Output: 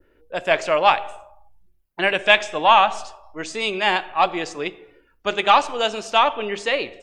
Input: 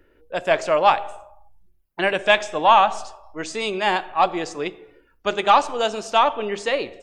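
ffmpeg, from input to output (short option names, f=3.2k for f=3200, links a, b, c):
-af "adynamicequalizer=threshold=0.02:dfrequency=2600:dqfactor=1:tfrequency=2600:tqfactor=1:attack=5:release=100:ratio=0.375:range=3:mode=boostabove:tftype=bell,volume=-1dB"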